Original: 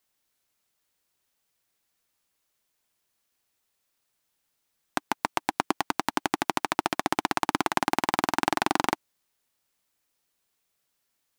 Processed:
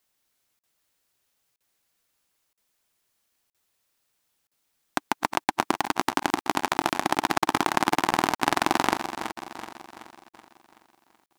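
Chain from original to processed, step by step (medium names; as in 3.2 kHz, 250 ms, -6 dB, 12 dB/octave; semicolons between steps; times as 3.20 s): backward echo that repeats 189 ms, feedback 70%, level -10 dB; crackling interface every 0.97 s, samples 2048, zero, from 0.59 s; trim +2 dB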